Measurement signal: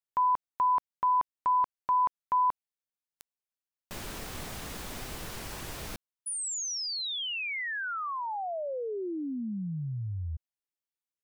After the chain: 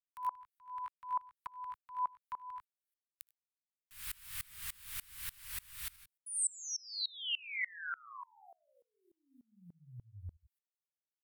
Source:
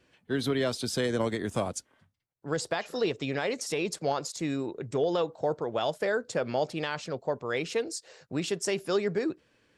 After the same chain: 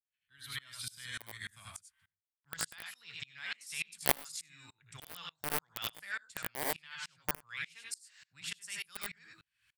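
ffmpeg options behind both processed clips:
-filter_complex "[0:a]aemphasis=mode=reproduction:type=cd,agate=range=-16dB:threshold=-55dB:ratio=16:release=249:detection=rms,lowshelf=f=390:g=-11,acrossover=split=130|1400[a][b][c];[b]acrusher=bits=3:mix=0:aa=0.000001[d];[a][d][c]amix=inputs=3:normalize=0,aexciter=amount=2.5:drive=8.7:freq=8.5k,asplit=2[e][f];[f]aecho=0:1:61|79|97:0.178|0.531|0.422[g];[e][g]amix=inputs=2:normalize=0,aeval=exprs='val(0)*pow(10,-28*if(lt(mod(-3.4*n/s,1),2*abs(-3.4)/1000),1-mod(-3.4*n/s,1)/(2*abs(-3.4)/1000),(mod(-3.4*n/s,1)-2*abs(-3.4)/1000)/(1-2*abs(-3.4)/1000))/20)':c=same,volume=3.5dB"

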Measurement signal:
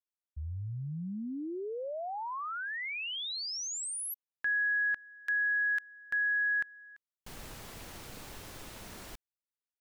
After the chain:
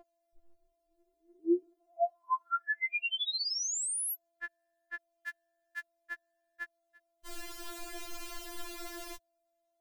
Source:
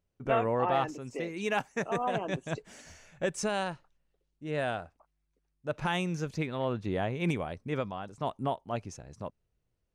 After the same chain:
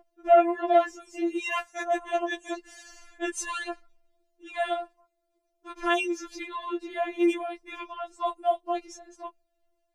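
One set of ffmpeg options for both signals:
-af "aeval=exprs='val(0)+0.00891*sin(2*PI*590*n/s)':c=same,afftfilt=real='re*4*eq(mod(b,16),0)':imag='im*4*eq(mod(b,16),0)':win_size=2048:overlap=0.75,volume=5.5dB"

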